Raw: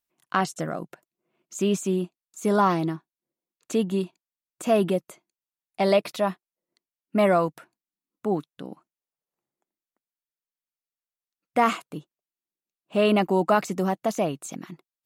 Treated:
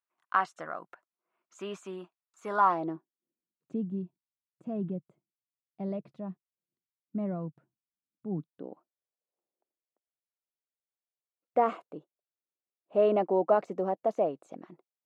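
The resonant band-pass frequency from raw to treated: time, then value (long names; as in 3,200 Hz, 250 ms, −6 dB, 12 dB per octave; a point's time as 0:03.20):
resonant band-pass, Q 1.7
0:02.61 1,200 Hz
0:02.94 440 Hz
0:03.89 110 Hz
0:08.27 110 Hz
0:08.71 540 Hz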